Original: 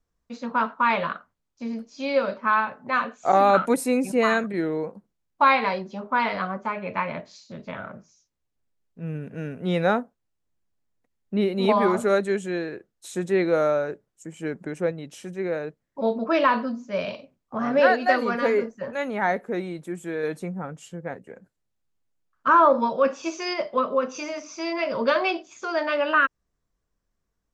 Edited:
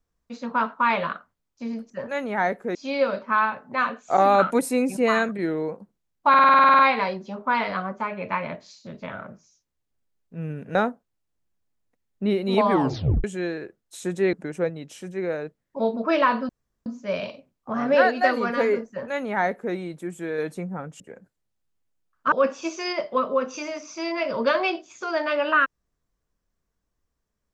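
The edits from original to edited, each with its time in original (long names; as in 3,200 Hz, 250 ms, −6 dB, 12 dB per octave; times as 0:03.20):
0:05.44: stutter 0.05 s, 11 plays
0:09.40–0:09.86: remove
0:11.82: tape stop 0.53 s
0:13.44–0:14.55: remove
0:16.71: splice in room tone 0.37 s
0:18.74–0:19.59: duplicate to 0:01.90
0:20.85–0:21.20: remove
0:22.52–0:22.93: remove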